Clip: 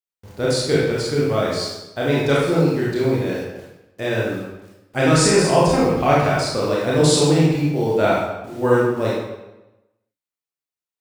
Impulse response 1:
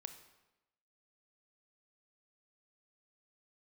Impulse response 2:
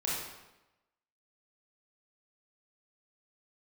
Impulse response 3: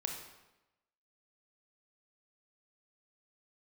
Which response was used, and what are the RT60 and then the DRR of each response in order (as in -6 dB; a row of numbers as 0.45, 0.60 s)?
2; 0.95, 1.0, 1.0 s; 8.0, -6.5, 2.0 dB